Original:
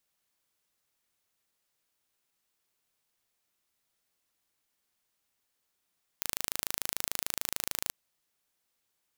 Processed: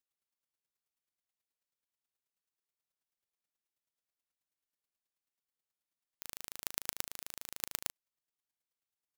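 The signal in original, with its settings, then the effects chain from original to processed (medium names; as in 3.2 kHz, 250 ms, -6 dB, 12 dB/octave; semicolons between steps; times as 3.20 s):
pulse train 26.8 per s, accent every 0, -4 dBFS 1.70 s
square tremolo 9.3 Hz, depth 60%, duty 15%; upward expansion 1.5:1, over -54 dBFS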